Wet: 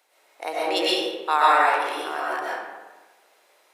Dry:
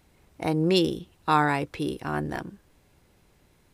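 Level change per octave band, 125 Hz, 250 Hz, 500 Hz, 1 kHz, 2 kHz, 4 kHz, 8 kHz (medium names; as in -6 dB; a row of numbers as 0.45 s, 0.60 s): under -30 dB, -8.0 dB, +2.0 dB, +7.0 dB, +7.0 dB, +6.5 dB, +5.5 dB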